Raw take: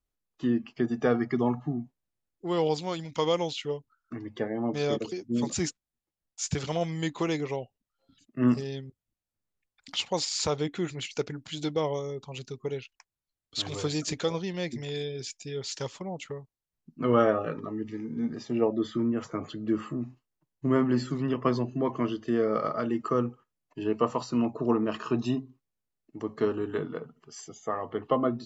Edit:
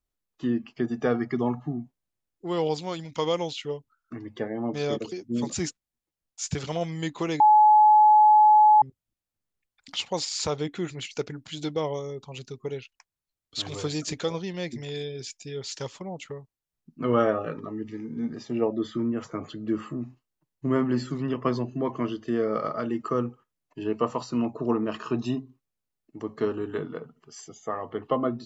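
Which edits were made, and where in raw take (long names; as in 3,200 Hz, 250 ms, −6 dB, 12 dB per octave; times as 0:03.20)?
0:07.40–0:08.82: beep over 851 Hz −12.5 dBFS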